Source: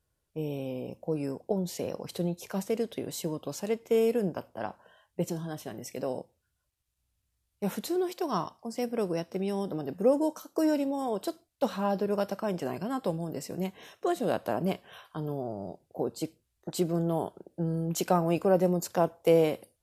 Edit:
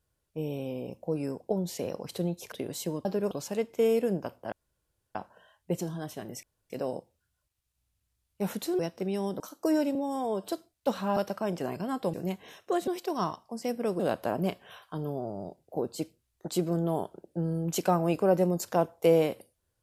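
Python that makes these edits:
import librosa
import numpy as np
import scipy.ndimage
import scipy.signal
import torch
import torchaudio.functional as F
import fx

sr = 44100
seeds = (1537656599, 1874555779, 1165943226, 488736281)

y = fx.edit(x, sr, fx.cut(start_s=2.52, length_s=0.38),
    fx.insert_room_tone(at_s=4.64, length_s=0.63),
    fx.insert_room_tone(at_s=5.92, length_s=0.27),
    fx.move(start_s=8.01, length_s=1.12, to_s=14.22),
    fx.cut(start_s=9.74, length_s=0.59),
    fx.stretch_span(start_s=10.88, length_s=0.35, factor=1.5),
    fx.move(start_s=11.92, length_s=0.26, to_s=3.43),
    fx.cut(start_s=13.15, length_s=0.33), tone=tone)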